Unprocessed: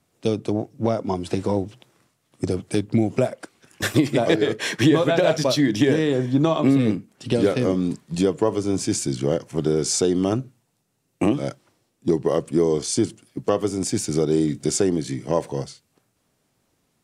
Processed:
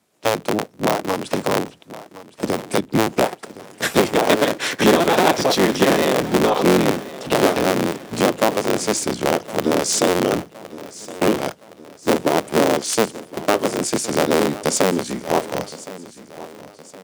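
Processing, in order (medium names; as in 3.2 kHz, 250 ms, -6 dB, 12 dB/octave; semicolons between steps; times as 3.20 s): cycle switcher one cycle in 3, inverted; high-pass 170 Hz 12 dB/octave; on a send: feedback delay 1066 ms, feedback 46%, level -17 dB; on the sum: trim +3 dB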